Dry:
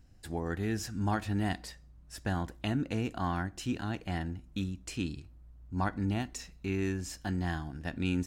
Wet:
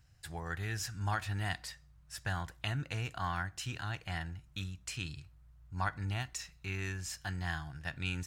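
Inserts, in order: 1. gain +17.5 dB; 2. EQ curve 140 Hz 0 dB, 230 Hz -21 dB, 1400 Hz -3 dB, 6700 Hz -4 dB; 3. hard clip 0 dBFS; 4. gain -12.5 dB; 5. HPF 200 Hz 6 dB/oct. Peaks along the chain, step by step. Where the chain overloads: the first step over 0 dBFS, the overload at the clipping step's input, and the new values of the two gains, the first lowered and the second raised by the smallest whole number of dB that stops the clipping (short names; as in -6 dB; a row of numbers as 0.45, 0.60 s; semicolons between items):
-0.5, -5.0, -5.0, -17.5, -18.5 dBFS; no overload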